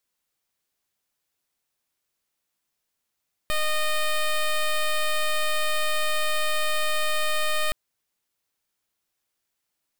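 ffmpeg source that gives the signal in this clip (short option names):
-f lavfi -i "aevalsrc='0.0708*(2*lt(mod(615*t,1),0.1)-1)':d=4.22:s=44100"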